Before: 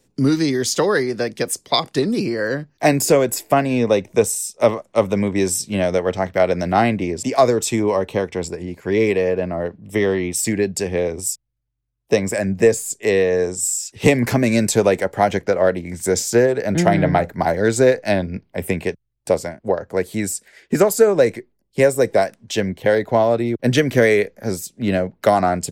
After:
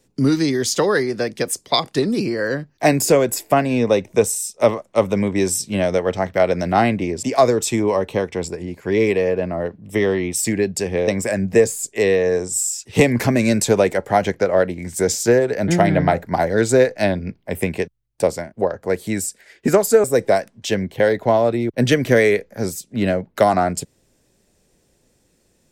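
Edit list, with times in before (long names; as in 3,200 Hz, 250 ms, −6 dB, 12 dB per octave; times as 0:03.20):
0:11.08–0:12.15: remove
0:21.11–0:21.90: remove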